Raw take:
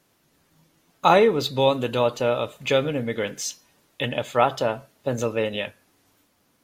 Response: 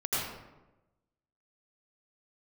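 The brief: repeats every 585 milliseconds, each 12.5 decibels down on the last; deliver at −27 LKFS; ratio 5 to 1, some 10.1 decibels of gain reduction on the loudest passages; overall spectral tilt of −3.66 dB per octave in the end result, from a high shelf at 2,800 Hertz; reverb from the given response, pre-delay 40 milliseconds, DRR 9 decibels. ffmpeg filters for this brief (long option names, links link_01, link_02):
-filter_complex "[0:a]highshelf=frequency=2800:gain=5,acompressor=threshold=-22dB:ratio=5,aecho=1:1:585|1170|1755:0.237|0.0569|0.0137,asplit=2[link_01][link_02];[1:a]atrim=start_sample=2205,adelay=40[link_03];[link_02][link_03]afir=irnorm=-1:irlink=0,volume=-17.5dB[link_04];[link_01][link_04]amix=inputs=2:normalize=0,volume=0.5dB"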